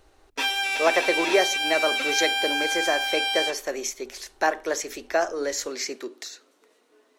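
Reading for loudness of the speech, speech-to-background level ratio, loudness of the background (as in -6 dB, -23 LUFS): -27.0 LUFS, -3.0 dB, -24.0 LUFS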